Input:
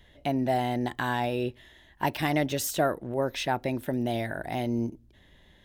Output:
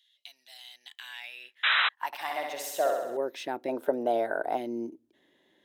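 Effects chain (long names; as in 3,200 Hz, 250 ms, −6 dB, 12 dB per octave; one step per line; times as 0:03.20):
0:01.63–0:01.89: sound drawn into the spectrogram noise 400–4,000 Hz −19 dBFS
high-pass filter sweep 3,700 Hz → 320 Hz, 0:00.68–0:03.45
0:02.06–0:03.17: flutter between parallel walls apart 11.3 metres, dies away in 0.99 s
0:03.69–0:04.57: gain on a spectral selection 400–1,600 Hz +12 dB
level −8 dB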